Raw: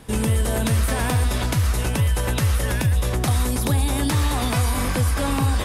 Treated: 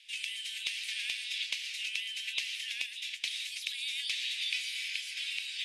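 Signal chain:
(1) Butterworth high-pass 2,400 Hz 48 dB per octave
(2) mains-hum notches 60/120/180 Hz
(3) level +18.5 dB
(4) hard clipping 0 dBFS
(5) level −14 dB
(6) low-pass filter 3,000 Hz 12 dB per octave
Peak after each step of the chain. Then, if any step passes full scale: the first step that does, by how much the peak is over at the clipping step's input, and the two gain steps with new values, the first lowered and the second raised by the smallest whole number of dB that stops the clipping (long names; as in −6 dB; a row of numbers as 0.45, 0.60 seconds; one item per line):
−14.5, −14.5, +4.0, 0.0, −14.0, −16.5 dBFS
step 3, 4.0 dB
step 3 +14.5 dB, step 5 −10 dB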